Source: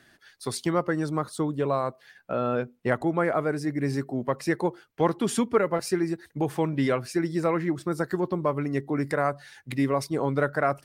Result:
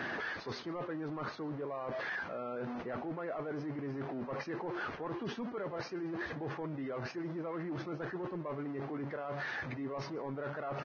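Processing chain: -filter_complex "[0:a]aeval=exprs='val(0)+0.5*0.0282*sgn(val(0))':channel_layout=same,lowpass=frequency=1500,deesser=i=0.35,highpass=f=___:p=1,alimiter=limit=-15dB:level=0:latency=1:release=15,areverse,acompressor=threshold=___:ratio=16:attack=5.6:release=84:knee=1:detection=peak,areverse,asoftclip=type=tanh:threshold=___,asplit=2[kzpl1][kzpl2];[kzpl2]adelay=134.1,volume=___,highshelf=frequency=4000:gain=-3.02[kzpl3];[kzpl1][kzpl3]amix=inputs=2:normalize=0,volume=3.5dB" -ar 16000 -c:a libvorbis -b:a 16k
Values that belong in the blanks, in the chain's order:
320, -39dB, -33dB, -25dB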